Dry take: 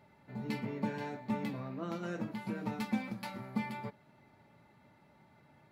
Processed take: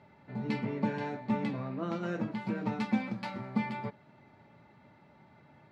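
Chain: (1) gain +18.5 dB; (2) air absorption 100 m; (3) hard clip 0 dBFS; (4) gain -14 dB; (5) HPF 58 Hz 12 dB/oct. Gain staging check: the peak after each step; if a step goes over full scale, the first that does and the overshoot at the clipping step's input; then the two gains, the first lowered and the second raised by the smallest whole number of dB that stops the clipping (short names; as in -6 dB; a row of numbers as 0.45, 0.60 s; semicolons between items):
-2.5, -3.0, -3.0, -17.0, -17.0 dBFS; no overload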